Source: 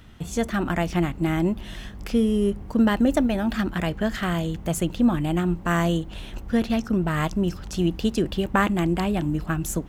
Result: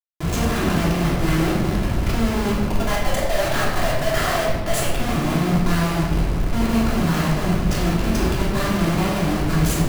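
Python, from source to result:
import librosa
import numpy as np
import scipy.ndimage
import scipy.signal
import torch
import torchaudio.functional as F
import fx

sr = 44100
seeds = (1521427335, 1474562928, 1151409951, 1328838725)

y = fx.ellip_highpass(x, sr, hz=610.0, order=4, stop_db=40, at=(2.68, 4.98))
y = fx.schmitt(y, sr, flips_db=-35.5)
y = fx.room_shoebox(y, sr, seeds[0], volume_m3=790.0, walls='mixed', distance_m=3.1)
y = y * librosa.db_to_amplitude(-3.0)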